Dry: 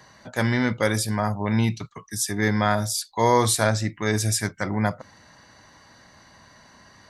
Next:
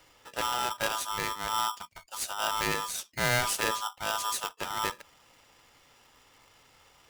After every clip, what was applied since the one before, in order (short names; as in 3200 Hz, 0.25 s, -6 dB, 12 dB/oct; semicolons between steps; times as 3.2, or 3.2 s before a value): polarity switched at an audio rate 1100 Hz; gain -8.5 dB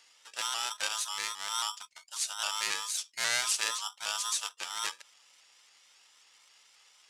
weighting filter ITU-R 468; shaped vibrato saw up 3.7 Hz, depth 100 cents; gain -8.5 dB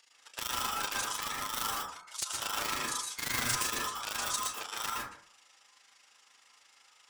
wrapped overs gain 19.5 dB; AM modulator 26 Hz, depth 65%; plate-style reverb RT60 0.53 s, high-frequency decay 0.3×, pre-delay 0.105 s, DRR -4 dB